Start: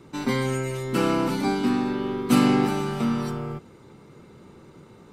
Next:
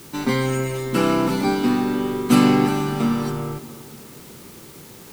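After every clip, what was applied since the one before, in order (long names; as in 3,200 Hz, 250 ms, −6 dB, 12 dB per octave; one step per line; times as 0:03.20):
tape delay 297 ms, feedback 61%, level −14.5 dB, low-pass 1,100 Hz
in parallel at −11 dB: bit-depth reduction 6 bits, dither triangular
on the sum: level +1.5 dB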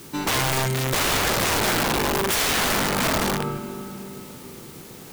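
spring reverb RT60 3.1 s, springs 36/46 ms, chirp 55 ms, DRR 6.5 dB
wrap-around overflow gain 17 dB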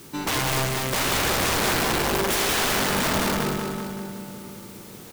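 repeating echo 189 ms, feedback 54%, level −5 dB
level −2.5 dB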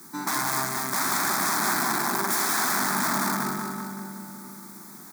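high-pass filter 190 Hz 24 dB per octave
phaser with its sweep stopped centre 1,200 Hz, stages 4
level +1.5 dB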